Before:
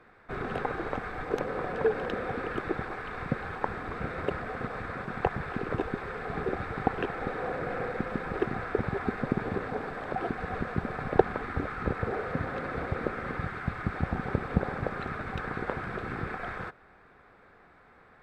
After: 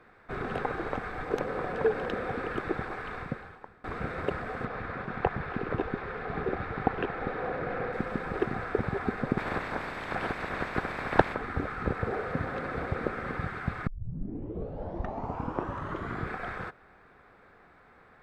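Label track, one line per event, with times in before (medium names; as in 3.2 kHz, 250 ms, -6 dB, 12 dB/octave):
3.130000	3.840000	fade out quadratic, to -22.5 dB
4.650000	7.930000	low-pass 4.3 kHz
9.370000	11.330000	spectral peaks clipped ceiling under each frame's peak by 16 dB
13.870000	13.870000	tape start 2.45 s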